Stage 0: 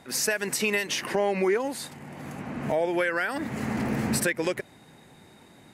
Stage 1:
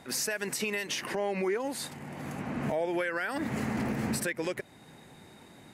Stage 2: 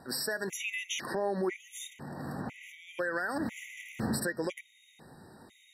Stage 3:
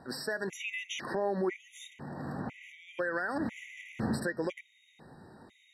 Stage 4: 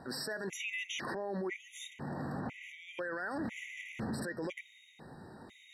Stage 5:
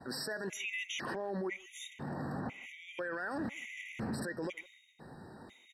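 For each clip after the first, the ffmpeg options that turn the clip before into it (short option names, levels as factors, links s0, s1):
-af "alimiter=limit=0.0794:level=0:latency=1:release=294"
-af "bandreject=f=206.1:t=h:w=4,bandreject=f=412.2:t=h:w=4,bandreject=f=618.3:t=h:w=4,bandreject=f=824.4:t=h:w=4,bandreject=f=1030.5:t=h:w=4,bandreject=f=1236.6:t=h:w=4,bandreject=f=1442.7:t=h:w=4,bandreject=f=1648.8:t=h:w=4,bandreject=f=1854.9:t=h:w=4,bandreject=f=2061:t=h:w=4,bandreject=f=2267.1:t=h:w=4,bandreject=f=2473.2:t=h:w=4,bandreject=f=2679.3:t=h:w=4,bandreject=f=2885.4:t=h:w=4,bandreject=f=3091.5:t=h:w=4,bandreject=f=3297.6:t=h:w=4,bandreject=f=3503.7:t=h:w=4,bandreject=f=3709.8:t=h:w=4,bandreject=f=3915.9:t=h:w=4,bandreject=f=4122:t=h:w=4,bandreject=f=4328.1:t=h:w=4,bandreject=f=4534.2:t=h:w=4,bandreject=f=4740.3:t=h:w=4,bandreject=f=4946.4:t=h:w=4,bandreject=f=5152.5:t=h:w=4,bandreject=f=5358.6:t=h:w=4,bandreject=f=5564.7:t=h:w=4,afftfilt=real='re*gt(sin(2*PI*1*pts/sr)*(1-2*mod(floor(b*sr/1024/1900),2)),0)':imag='im*gt(sin(2*PI*1*pts/sr)*(1-2*mod(floor(b*sr/1024/1900),2)),0)':win_size=1024:overlap=0.75"
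-af "aemphasis=mode=reproduction:type=50fm"
-af "alimiter=level_in=2.51:limit=0.0631:level=0:latency=1:release=32,volume=0.398,areverse,acompressor=mode=upward:threshold=0.00178:ratio=2.5,areverse,volume=1.26"
-filter_complex "[0:a]agate=range=0.0224:threshold=0.00178:ratio=3:detection=peak,asplit=2[s0][s1];[s1]adelay=160,highpass=300,lowpass=3400,asoftclip=type=hard:threshold=0.0119,volume=0.1[s2];[s0][s2]amix=inputs=2:normalize=0"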